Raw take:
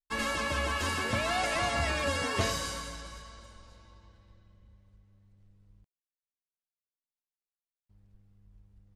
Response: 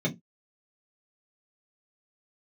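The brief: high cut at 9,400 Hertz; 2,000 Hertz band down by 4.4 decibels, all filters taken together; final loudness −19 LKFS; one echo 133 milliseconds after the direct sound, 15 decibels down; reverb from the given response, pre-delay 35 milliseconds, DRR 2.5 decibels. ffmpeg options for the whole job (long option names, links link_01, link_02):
-filter_complex "[0:a]lowpass=9400,equalizer=frequency=2000:width_type=o:gain=-5.5,aecho=1:1:133:0.178,asplit=2[link_01][link_02];[1:a]atrim=start_sample=2205,adelay=35[link_03];[link_02][link_03]afir=irnorm=-1:irlink=0,volume=-10.5dB[link_04];[link_01][link_04]amix=inputs=2:normalize=0,volume=9.5dB"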